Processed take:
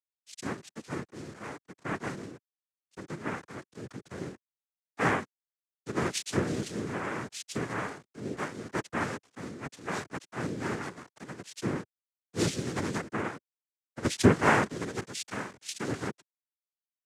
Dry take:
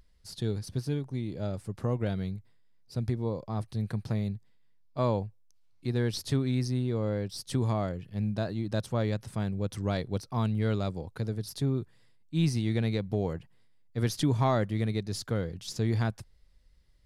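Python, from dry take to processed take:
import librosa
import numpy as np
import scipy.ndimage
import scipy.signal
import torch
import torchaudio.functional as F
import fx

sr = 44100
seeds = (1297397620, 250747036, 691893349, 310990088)

y = fx.cheby_harmonics(x, sr, harmonics=(2, 3), levels_db=(-14, -18), full_scale_db=-16.5)
y = scipy.signal.sosfilt(scipy.signal.butter(4, 190.0, 'highpass', fs=sr, output='sos'), y)
y = fx.quant_dither(y, sr, seeds[0], bits=8, dither='none')
y = fx.noise_vocoder(y, sr, seeds[1], bands=3)
y = fx.band_widen(y, sr, depth_pct=70)
y = F.gain(torch.from_numpy(y), 2.0).numpy()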